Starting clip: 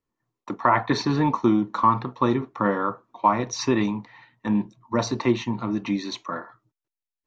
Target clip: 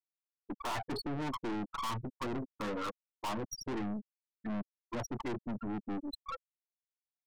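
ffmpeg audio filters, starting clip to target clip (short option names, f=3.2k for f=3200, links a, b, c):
-af "afftfilt=real='re*gte(hypot(re,im),0.178)':imag='im*gte(hypot(re,im),0.178)':win_size=1024:overlap=0.75,aeval=exprs='(tanh(50.1*val(0)+0.4)-tanh(0.4))/50.1':c=same,volume=-1dB"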